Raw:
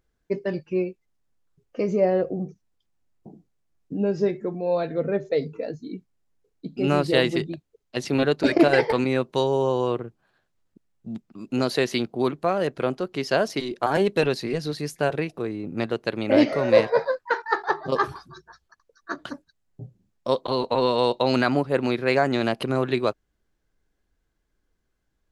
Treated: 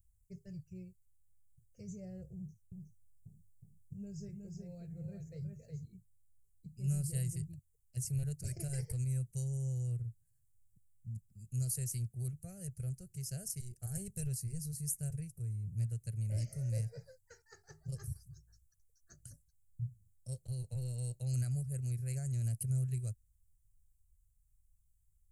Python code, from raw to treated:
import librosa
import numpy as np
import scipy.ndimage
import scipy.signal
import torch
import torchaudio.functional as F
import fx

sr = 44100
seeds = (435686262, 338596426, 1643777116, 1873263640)

y = fx.echo_single(x, sr, ms=365, db=-4.5, at=(2.35, 5.85))
y = scipy.signal.sosfilt(scipy.signal.ellip(3, 1.0, 40, [110.0, 8300.0], 'bandstop', fs=sr, output='sos'), y)
y = fx.low_shelf(y, sr, hz=320.0, db=-3.5)
y = y * librosa.db_to_amplitude(8.0)